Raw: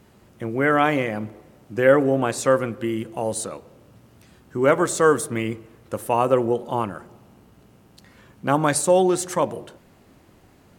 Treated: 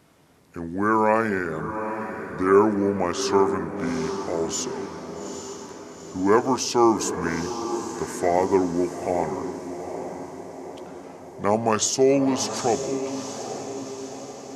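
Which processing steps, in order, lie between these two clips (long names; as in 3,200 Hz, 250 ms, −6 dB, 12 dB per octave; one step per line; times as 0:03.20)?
high-pass filter 370 Hz 6 dB per octave
feedback delay with all-pass diffusion 628 ms, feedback 54%, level −9 dB
wrong playback speed 45 rpm record played at 33 rpm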